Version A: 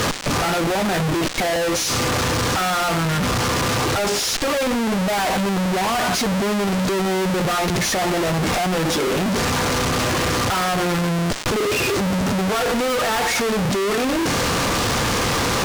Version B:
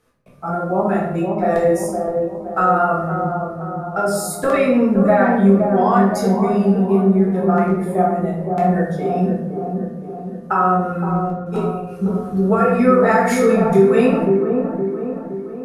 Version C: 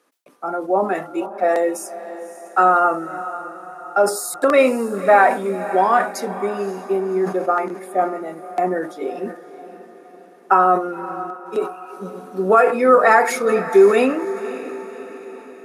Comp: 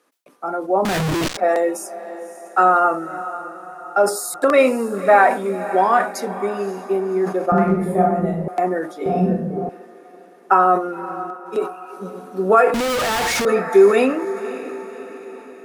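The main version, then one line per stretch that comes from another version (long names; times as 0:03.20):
C
0:00.85–0:01.37: punch in from A
0:07.52–0:08.48: punch in from B
0:09.06–0:09.69: punch in from B
0:12.74–0:13.45: punch in from A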